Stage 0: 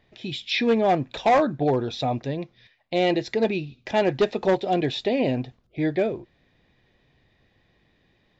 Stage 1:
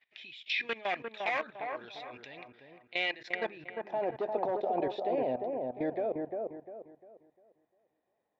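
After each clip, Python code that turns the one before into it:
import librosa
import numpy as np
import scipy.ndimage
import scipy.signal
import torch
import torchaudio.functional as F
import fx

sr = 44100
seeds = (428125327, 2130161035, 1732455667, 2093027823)

y = fx.filter_sweep_bandpass(x, sr, from_hz=2300.0, to_hz=730.0, start_s=3.05, end_s=3.92, q=2.0)
y = fx.level_steps(y, sr, step_db=18)
y = fx.echo_wet_lowpass(y, sr, ms=350, feedback_pct=33, hz=1400.0, wet_db=-3.5)
y = y * librosa.db_to_amplitude(5.0)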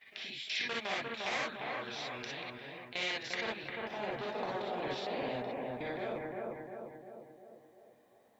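y = fx.rev_gated(x, sr, seeds[0], gate_ms=80, shape='rising', drr_db=-4.0)
y = fx.spectral_comp(y, sr, ratio=2.0)
y = y * librosa.db_to_amplitude(-7.5)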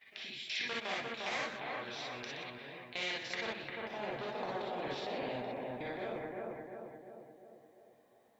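y = x + 10.0 ** (-10.5 / 20.0) * np.pad(x, (int(122 * sr / 1000.0), 0))[:len(x)]
y = y * librosa.db_to_amplitude(-2.0)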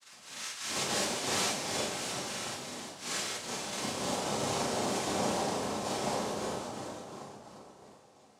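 y = fx.auto_swell(x, sr, attack_ms=270.0)
y = fx.noise_vocoder(y, sr, seeds[1], bands=2)
y = fx.rev_schroeder(y, sr, rt60_s=0.42, comb_ms=29, drr_db=-6.0)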